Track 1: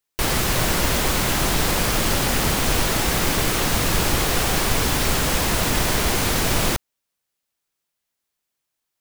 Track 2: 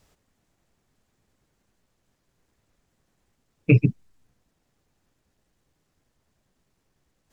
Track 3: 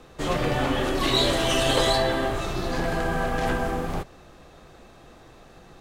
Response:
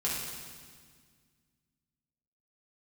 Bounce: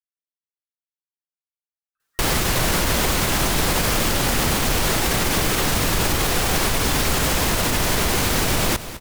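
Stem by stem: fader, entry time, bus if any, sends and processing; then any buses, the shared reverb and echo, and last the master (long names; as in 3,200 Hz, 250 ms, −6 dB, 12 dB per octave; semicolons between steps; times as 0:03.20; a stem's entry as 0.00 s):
+3.0 dB, 2.00 s, no send, echo send −16 dB, tape wow and flutter 15 cents
muted
−17.0 dB, 1.95 s, no send, no echo send, low-pass filter 2,100 Hz; gate on every frequency bin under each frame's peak −20 dB strong; elliptic high-pass filter 1,400 Hz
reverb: not used
echo: repeating echo 205 ms, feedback 36%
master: brickwall limiter −10 dBFS, peak gain reduction 6 dB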